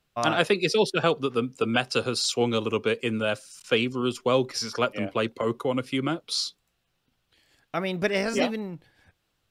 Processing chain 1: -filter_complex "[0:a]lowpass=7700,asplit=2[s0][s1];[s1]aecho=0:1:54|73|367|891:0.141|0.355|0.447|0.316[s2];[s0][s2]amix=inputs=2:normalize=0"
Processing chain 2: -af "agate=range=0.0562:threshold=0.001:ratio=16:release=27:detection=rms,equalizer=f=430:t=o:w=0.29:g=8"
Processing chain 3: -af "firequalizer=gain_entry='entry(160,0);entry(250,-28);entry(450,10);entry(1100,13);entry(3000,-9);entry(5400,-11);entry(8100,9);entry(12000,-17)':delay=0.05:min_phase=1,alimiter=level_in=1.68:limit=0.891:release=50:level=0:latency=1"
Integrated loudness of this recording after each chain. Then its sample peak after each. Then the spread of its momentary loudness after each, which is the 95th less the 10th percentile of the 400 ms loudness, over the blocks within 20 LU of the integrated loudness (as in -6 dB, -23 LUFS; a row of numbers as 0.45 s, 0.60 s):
-25.0 LUFS, -23.5 LUFS, -15.5 LUFS; -8.0 dBFS, -6.0 dBFS, -1.0 dBFS; 12 LU, 8 LU, 8 LU